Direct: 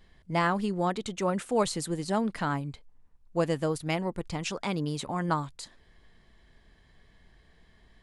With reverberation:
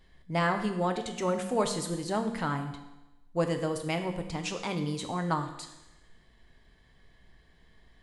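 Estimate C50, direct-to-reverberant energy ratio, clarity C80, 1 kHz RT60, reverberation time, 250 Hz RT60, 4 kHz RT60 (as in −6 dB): 8.0 dB, 5.0 dB, 10.0 dB, 1.0 s, 1.0 s, 1.0 s, 1.0 s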